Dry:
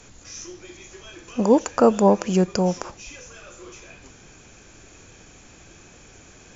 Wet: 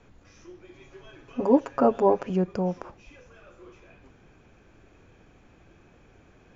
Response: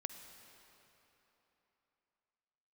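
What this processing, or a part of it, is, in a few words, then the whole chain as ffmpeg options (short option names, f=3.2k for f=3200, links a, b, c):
phone in a pocket: -filter_complex "[0:a]lowpass=3.6k,highshelf=f=2.2k:g=-9.5,asettb=1/sr,asplit=3[a][b][c];[a]atrim=end=0.734[d];[b]atrim=start=0.73:end=2.3,asetpts=PTS-STARTPTS,afade=t=in:d=0.004:c=qsin,afade=t=out:st=1.566:d=0.004:c=qsin,aecho=1:1:7.3:0.94,atrim=end_sample=69237[e];[c]atrim=start=2.296[f];[d][e]acrossfade=d=0.004:c1=hsin:c2=qsin[g];[g][f]acrossfade=d=0.004:c1=qsin:c2=hsin,volume=-5.5dB"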